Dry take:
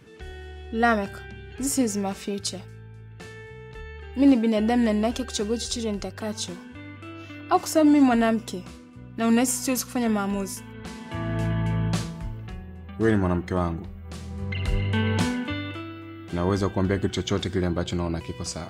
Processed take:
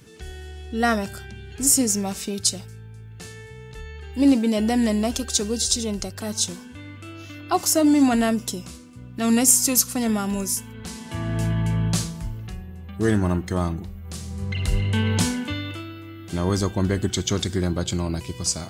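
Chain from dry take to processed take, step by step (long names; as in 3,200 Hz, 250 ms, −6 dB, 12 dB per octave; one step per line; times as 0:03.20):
bass and treble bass +4 dB, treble +13 dB
level −1 dB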